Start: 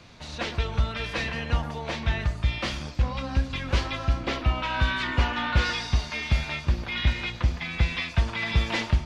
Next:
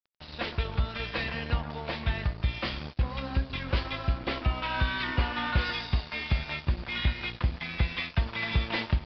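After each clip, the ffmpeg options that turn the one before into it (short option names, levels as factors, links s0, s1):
-af "acompressor=threshold=0.0501:ratio=1.5,aresample=11025,aeval=exprs='sgn(val(0))*max(abs(val(0))-0.00841,0)':c=same,aresample=44100"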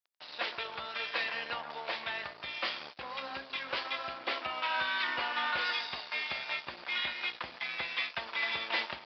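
-af "highpass=620"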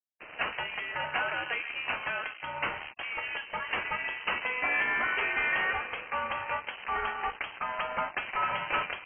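-af "asoftclip=type=tanh:threshold=0.0668,afftfilt=real='re*gte(hypot(re,im),0.00178)':imag='im*gte(hypot(re,im),0.00178)':win_size=1024:overlap=0.75,lowpass=f=2800:t=q:w=0.5098,lowpass=f=2800:t=q:w=0.6013,lowpass=f=2800:t=q:w=0.9,lowpass=f=2800:t=q:w=2.563,afreqshift=-3300,volume=1.88"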